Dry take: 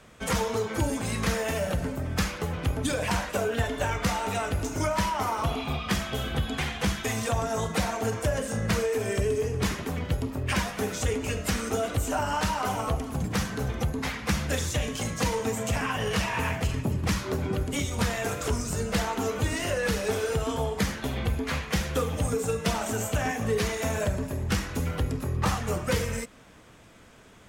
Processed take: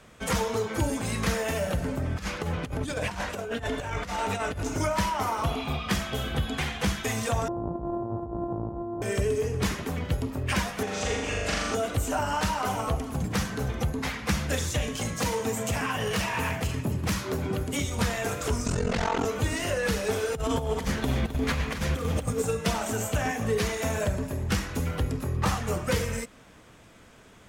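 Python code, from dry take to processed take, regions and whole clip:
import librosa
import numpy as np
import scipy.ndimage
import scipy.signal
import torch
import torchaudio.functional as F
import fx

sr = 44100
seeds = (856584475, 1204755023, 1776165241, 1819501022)

y = fx.chain(x, sr, fx.high_shelf(hz=12000.0, db=-9.5),
    fx.over_compress(threshold_db=-30.0, ratio=-0.5),
    fx.echo_single(ms=779, db=-18.0), at=(1.88, 4.78))
y = fx.chain(y, sr, fx.sample_sort(block=128),
    fx.cheby2_lowpass(hz=1900.0, order=4, stop_db=40),
    fx.over_compress(threshold_db=-32.0, ratio=-1.0), at=(7.48, 9.02))
y = fx.chain(y, sr, fx.lowpass(hz=6000.0, slope=12),
    fx.peak_eq(hz=110.0, db=-9.0, octaves=2.8),
    fx.room_flutter(wall_m=7.0, rt60_s=1.1), at=(10.83, 11.75))
y = fx.chain(y, sr, fx.highpass(hz=68.0, slope=12),
    fx.clip_hard(threshold_db=-21.5),
    fx.high_shelf(hz=10000.0, db=4.5), at=(15.14, 17.77))
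y = fx.chain(y, sr, fx.ring_mod(carrier_hz=22.0),
    fx.air_absorb(metres=83.0),
    fx.env_flatten(amount_pct=100), at=(18.66, 19.25))
y = fx.chain(y, sr, fx.low_shelf(hz=320.0, db=5.0),
    fx.over_compress(threshold_db=-27.0, ratio=-0.5),
    fx.echo_crushed(ms=263, feedback_pct=35, bits=9, wet_db=-11), at=(20.35, 22.42))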